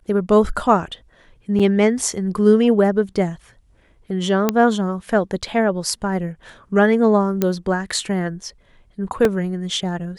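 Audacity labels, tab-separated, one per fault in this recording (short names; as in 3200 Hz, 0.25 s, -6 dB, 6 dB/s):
1.590000	1.600000	gap 6.1 ms
4.490000	4.490000	pop -3 dBFS
7.420000	7.420000	pop -5 dBFS
9.250000	9.250000	gap 2.1 ms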